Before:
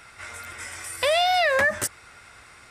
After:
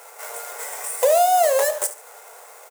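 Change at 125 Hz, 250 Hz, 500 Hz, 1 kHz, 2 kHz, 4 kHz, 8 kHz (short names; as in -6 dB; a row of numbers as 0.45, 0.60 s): under -30 dB, under -10 dB, +6.0 dB, +5.0 dB, -9.0 dB, -7.0 dB, +7.0 dB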